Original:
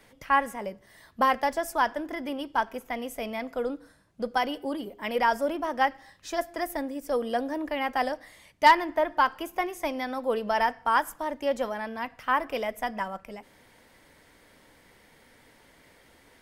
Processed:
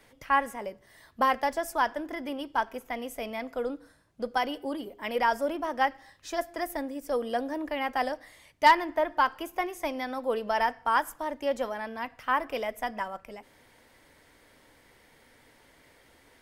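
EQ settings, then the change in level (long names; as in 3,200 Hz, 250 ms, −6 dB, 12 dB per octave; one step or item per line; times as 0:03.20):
parametric band 190 Hz −6.5 dB 0.28 octaves
−1.5 dB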